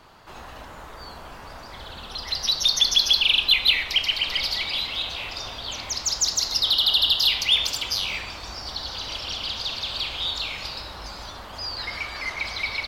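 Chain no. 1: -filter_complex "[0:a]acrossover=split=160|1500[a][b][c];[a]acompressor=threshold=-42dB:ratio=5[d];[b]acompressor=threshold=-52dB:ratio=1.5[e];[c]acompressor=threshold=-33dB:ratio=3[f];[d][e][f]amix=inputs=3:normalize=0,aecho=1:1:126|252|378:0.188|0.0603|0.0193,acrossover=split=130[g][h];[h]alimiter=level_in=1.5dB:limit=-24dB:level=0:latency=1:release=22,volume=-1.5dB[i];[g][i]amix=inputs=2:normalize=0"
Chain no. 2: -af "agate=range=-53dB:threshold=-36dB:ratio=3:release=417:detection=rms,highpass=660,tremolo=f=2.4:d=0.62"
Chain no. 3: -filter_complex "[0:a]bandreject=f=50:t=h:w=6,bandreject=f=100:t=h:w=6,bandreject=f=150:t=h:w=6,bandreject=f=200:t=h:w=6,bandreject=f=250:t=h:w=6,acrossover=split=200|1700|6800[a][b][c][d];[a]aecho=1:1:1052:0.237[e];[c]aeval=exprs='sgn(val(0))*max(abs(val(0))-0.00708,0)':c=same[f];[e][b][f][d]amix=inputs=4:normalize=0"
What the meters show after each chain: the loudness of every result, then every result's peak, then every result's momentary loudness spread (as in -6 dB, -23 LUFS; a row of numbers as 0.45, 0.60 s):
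-33.0, -24.5, -22.5 LUFS; -23.5, -8.0, -6.5 dBFS; 10, 17, 19 LU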